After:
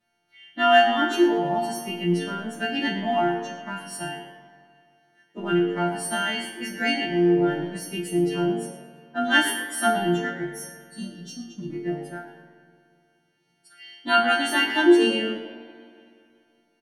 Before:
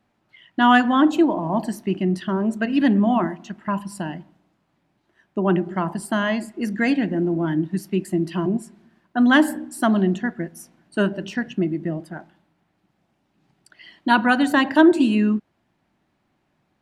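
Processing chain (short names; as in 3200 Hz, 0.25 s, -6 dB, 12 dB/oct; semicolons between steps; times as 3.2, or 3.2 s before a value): frequency quantiser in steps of 2 st; 10.45–11.7 elliptic band-stop 260–4000 Hz; in parallel at -10 dB: crossover distortion -32 dBFS; on the sum: resonator bank A#2 major, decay 0.43 s; on a send: frequency-shifting echo 0.112 s, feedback 35%, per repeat +100 Hz, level -16 dB; on the sum: spring tank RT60 2.5 s, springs 42/47 ms, chirp 45 ms, DRR 9.5 dB; gain +8 dB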